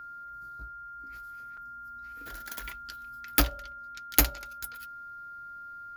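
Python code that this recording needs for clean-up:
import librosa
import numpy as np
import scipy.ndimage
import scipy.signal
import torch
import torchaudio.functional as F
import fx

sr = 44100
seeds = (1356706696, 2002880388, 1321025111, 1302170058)

y = fx.notch(x, sr, hz=1400.0, q=30.0)
y = fx.fix_interpolate(y, sr, at_s=(1.57,), length_ms=4.7)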